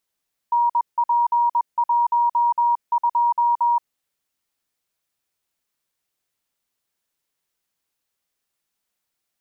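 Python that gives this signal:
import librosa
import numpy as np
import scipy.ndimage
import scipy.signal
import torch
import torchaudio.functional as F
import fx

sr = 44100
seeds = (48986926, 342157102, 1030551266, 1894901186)

y = fx.morse(sr, text='NP12', wpm=21, hz=950.0, level_db=-15.0)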